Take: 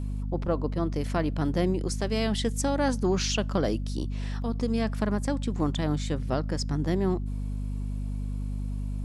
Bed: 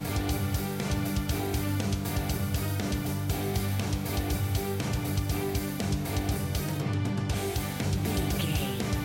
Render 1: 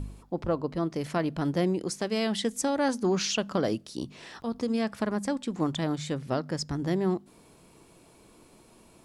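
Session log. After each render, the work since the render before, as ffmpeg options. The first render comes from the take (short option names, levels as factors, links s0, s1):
-af "bandreject=f=50:t=h:w=4,bandreject=f=100:t=h:w=4,bandreject=f=150:t=h:w=4,bandreject=f=200:t=h:w=4,bandreject=f=250:t=h:w=4"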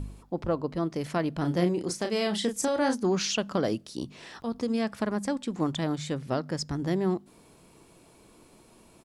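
-filter_complex "[0:a]asplit=3[s0][s1][s2];[s0]afade=t=out:st=1.42:d=0.02[s3];[s1]asplit=2[s4][s5];[s5]adelay=34,volume=0.473[s6];[s4][s6]amix=inputs=2:normalize=0,afade=t=in:st=1.42:d=0.02,afade=t=out:st=2.94:d=0.02[s7];[s2]afade=t=in:st=2.94:d=0.02[s8];[s3][s7][s8]amix=inputs=3:normalize=0"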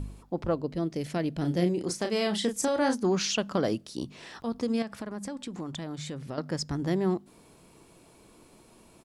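-filter_complex "[0:a]asettb=1/sr,asplit=3[s0][s1][s2];[s0]atrim=end=0.544[s3];[s1]atrim=start=0.54:end=1.81,asetpts=PTS-STARTPTS,afade=t=in:d=0.004:c=qsin,afade=t=out:st=1.266:d=0.004:c=qsin,equalizer=f=1100:w=1.4:g=-9.5[s4];[s2]atrim=start=1.806[s5];[s3][s4]acrossfade=d=0.004:c1=hsin:c2=qsin[s6];[s6][s5]acrossfade=d=0.004:c1=qsin:c2=hsin,asettb=1/sr,asplit=3[s7][s8][s9];[s7]atrim=end=4.824[s10];[s8]atrim=start=4.82:end=6.38,asetpts=PTS-STARTPTS,afade=t=in:d=0.004:c=qsin,afade=t=out:st=1.556:d=0.004:c=qsin,acompressor=threshold=0.0224:ratio=5:attack=3.2:release=140:knee=1:detection=peak[s11];[s9]atrim=start=6.376[s12];[s10][s11]acrossfade=d=0.004:c1=hsin:c2=qsin[s13];[s13][s12]acrossfade=d=0.004:c1=qsin:c2=hsin"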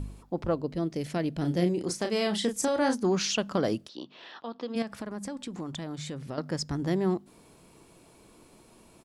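-filter_complex "[0:a]asplit=3[s0][s1][s2];[s0]afade=t=out:st=3.87:d=0.02[s3];[s1]highpass=380,equalizer=f=430:t=q:w=4:g=-4,equalizer=f=2200:t=q:w=4:g=-6,equalizer=f=3300:t=q:w=4:g=4,lowpass=f=4200:w=0.5412,lowpass=f=4200:w=1.3066,afade=t=in:st=3.87:d=0.02,afade=t=out:st=4.75:d=0.02[s4];[s2]afade=t=in:st=4.75:d=0.02[s5];[s3][s4][s5]amix=inputs=3:normalize=0"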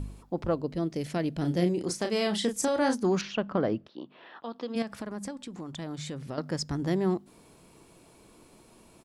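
-filter_complex "[0:a]asettb=1/sr,asplit=3[s0][s1][s2];[s0]atrim=end=3.214[s3];[s1]atrim=start=3.21:end=4.43,asetpts=PTS-STARTPTS,afade=t=in:d=0.004:c=qsin,afade=t=out:st=1.216:d=0.004:c=qsin,lowpass=2100[s4];[s2]atrim=start=4.426[s5];[s3][s4]acrossfade=d=0.004:c1=hsin:c2=qsin[s6];[s6][s5]acrossfade=d=0.004:c1=qsin:c2=hsin,asplit=3[s7][s8][s9];[s7]atrim=end=5.312[s10];[s8]atrim=start=5.308:end=5.792,asetpts=PTS-STARTPTS,volume=0.708[s11];[s9]atrim=start=5.788[s12];[s10][s11]acrossfade=d=0.004:c1=hsin:c2=hsin[s13];[s13][s12]acrossfade=d=0.004:c1=hsin:c2=hsin"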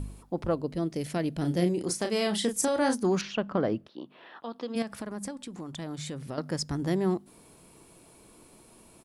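-af "equalizer=f=10000:t=o:w=0.5:g=7.5"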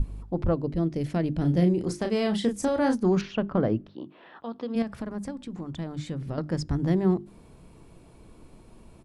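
-af "aemphasis=mode=reproduction:type=bsi,bandreject=f=50:t=h:w=6,bandreject=f=100:t=h:w=6,bandreject=f=150:t=h:w=6,bandreject=f=200:t=h:w=6,bandreject=f=250:t=h:w=6,bandreject=f=300:t=h:w=6,bandreject=f=350:t=h:w=6,bandreject=f=400:t=h:w=6"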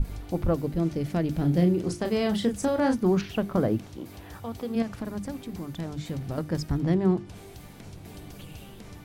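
-filter_complex "[1:a]volume=0.168[s0];[0:a][s0]amix=inputs=2:normalize=0"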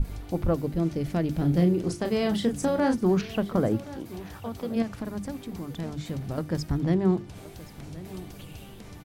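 -af "aecho=1:1:1075:0.133"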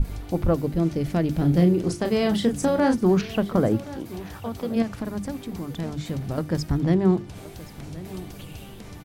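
-af "volume=1.5"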